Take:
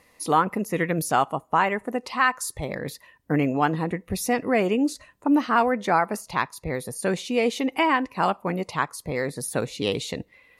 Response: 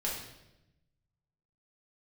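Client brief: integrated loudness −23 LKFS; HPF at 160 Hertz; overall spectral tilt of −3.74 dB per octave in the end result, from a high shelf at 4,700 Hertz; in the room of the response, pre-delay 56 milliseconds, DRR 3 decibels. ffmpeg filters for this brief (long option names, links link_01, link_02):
-filter_complex "[0:a]highpass=160,highshelf=frequency=4700:gain=6,asplit=2[link_01][link_02];[1:a]atrim=start_sample=2205,adelay=56[link_03];[link_02][link_03]afir=irnorm=-1:irlink=0,volume=-7.5dB[link_04];[link_01][link_04]amix=inputs=2:normalize=0"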